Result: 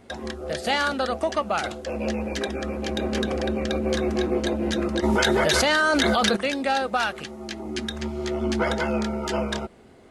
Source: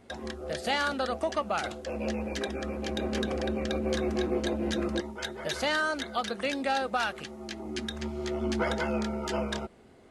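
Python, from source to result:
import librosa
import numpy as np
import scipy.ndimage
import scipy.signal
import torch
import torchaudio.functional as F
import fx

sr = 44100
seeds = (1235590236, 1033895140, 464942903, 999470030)

y = fx.env_flatten(x, sr, amount_pct=100, at=(5.02, 6.35), fade=0.02)
y = y * librosa.db_to_amplitude(5.0)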